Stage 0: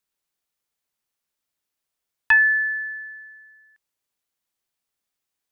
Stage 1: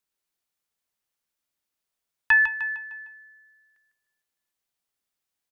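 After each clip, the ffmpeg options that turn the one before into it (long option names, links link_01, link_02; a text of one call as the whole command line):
ffmpeg -i in.wav -af "aecho=1:1:152|304|456|608|760:0.398|0.175|0.0771|0.0339|0.0149,volume=-2.5dB" out.wav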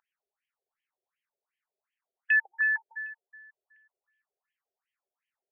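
ffmpeg -i in.wav -af "aeval=exprs='(tanh(22.4*val(0)+0.5)-tanh(0.5))/22.4':channel_layout=same,aeval=exprs='val(0)+0.00355*(sin(2*PI*50*n/s)+sin(2*PI*2*50*n/s)/2+sin(2*PI*3*50*n/s)/3+sin(2*PI*4*50*n/s)/4+sin(2*PI*5*50*n/s)/5)':channel_layout=same,afftfilt=real='re*between(b*sr/1024,510*pow(2400/510,0.5+0.5*sin(2*PI*2.7*pts/sr))/1.41,510*pow(2400/510,0.5+0.5*sin(2*PI*2.7*pts/sr))*1.41)':imag='im*between(b*sr/1024,510*pow(2400/510,0.5+0.5*sin(2*PI*2.7*pts/sr))/1.41,510*pow(2400/510,0.5+0.5*sin(2*PI*2.7*pts/sr))*1.41)':win_size=1024:overlap=0.75,volume=7.5dB" out.wav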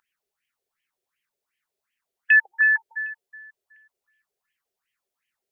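ffmpeg -i in.wav -af "equalizer=frequency=730:width=1:gain=-7,volume=9dB" out.wav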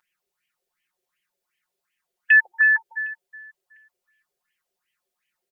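ffmpeg -i in.wav -af "aecho=1:1:5.6:0.95" out.wav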